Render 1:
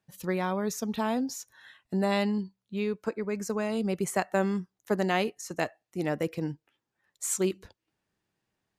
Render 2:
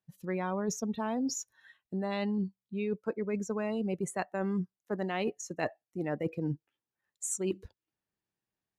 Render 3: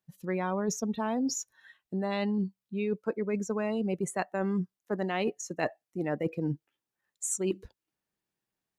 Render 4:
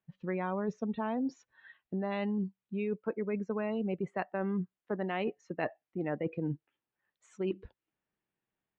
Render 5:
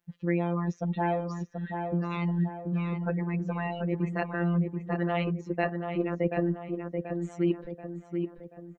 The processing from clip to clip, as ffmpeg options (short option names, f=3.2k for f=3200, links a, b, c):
-af "afftdn=nr=17:nf=-38,areverse,acompressor=threshold=-35dB:ratio=12,areverse,volume=6dB"
-af "equalizer=f=91:w=2.1:g=-6,volume=2.5dB"
-af "lowpass=f=3.1k:w=0.5412,lowpass=f=3.1k:w=1.3066,acompressor=threshold=-35dB:ratio=1.5"
-filter_complex "[0:a]afftfilt=real='hypot(re,im)*cos(PI*b)':imag='0':win_size=1024:overlap=0.75,asplit=2[a][b];[b]adelay=733,lowpass=f=2.1k:p=1,volume=-5dB,asplit=2[c][d];[d]adelay=733,lowpass=f=2.1k:p=1,volume=0.48,asplit=2[e][f];[f]adelay=733,lowpass=f=2.1k:p=1,volume=0.48,asplit=2[g][h];[h]adelay=733,lowpass=f=2.1k:p=1,volume=0.48,asplit=2[i][j];[j]adelay=733,lowpass=f=2.1k:p=1,volume=0.48,asplit=2[k][l];[l]adelay=733,lowpass=f=2.1k:p=1,volume=0.48[m];[c][e][g][i][k][m]amix=inputs=6:normalize=0[n];[a][n]amix=inputs=2:normalize=0,volume=9dB"